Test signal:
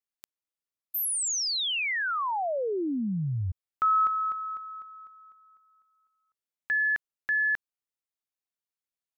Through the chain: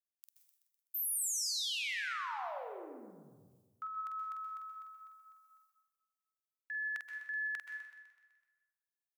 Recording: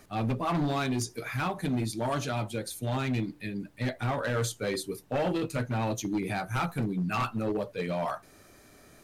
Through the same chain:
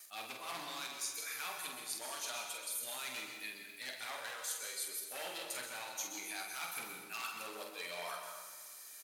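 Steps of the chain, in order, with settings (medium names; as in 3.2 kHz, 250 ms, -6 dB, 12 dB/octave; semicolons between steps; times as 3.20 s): high-pass 460 Hz 6 dB/octave; gate with hold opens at -55 dBFS, closes at -57 dBFS, range -17 dB; differentiator; reverse; compression 4:1, threshold -48 dBFS; reverse; doubling 47 ms -5.5 dB; on a send: feedback delay 126 ms, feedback 58%, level -11 dB; on the sum: plate-style reverb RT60 1.1 s, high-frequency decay 0.65×, pre-delay 115 ms, DRR 5 dB; trim +7 dB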